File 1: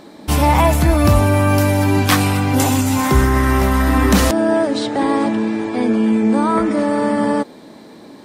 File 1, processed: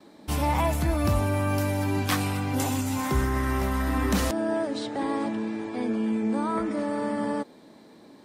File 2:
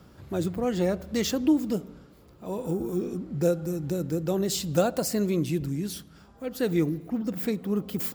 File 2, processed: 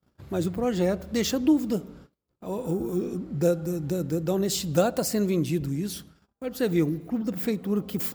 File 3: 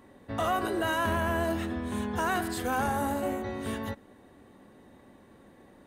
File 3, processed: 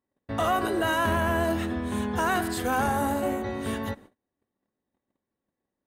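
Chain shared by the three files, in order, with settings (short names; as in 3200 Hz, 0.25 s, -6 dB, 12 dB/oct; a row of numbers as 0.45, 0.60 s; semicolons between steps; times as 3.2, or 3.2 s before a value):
gate -49 dBFS, range -34 dB; match loudness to -27 LUFS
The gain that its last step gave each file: -11.5, +1.0, +3.5 dB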